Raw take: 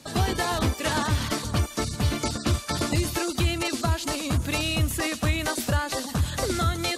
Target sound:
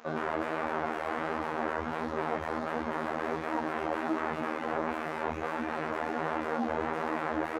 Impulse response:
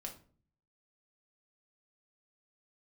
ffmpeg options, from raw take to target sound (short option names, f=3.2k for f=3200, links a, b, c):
-filter_complex "[0:a]bandreject=f=630:w=12,aecho=1:1:174|523:0.251|0.422,aresample=16000,aeval=exprs='sgn(val(0))*max(abs(val(0))-0.00501,0)':c=same,aresample=44100,equalizer=f=560:w=0.39:g=2.5,aeval=exprs='0.299*sin(PI/2*8.91*val(0)/0.299)':c=same,alimiter=limit=-22dB:level=0:latency=1,highpass=41,acrossover=split=230 2000:gain=0.178 1 0.0891[a][b][c];[a][b][c]amix=inputs=3:normalize=0,acrossover=split=2700[d][e];[e]acompressor=threshold=-53dB:ratio=4:attack=1:release=60[f];[d][f]amix=inputs=2:normalize=0,afftfilt=real='hypot(re,im)*cos(PI*b)':imag='0':win_size=2048:overlap=0.75,asetrate=40517,aresample=44100,flanger=delay=2.9:depth=8.8:regen=20:speed=1.4:shape=triangular,volume=4dB"